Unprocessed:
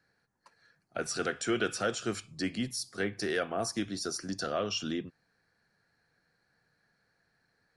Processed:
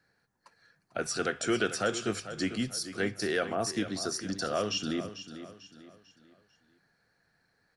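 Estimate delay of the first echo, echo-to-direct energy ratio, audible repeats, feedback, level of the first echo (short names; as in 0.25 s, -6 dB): 0.445 s, -11.5 dB, 3, 38%, -12.0 dB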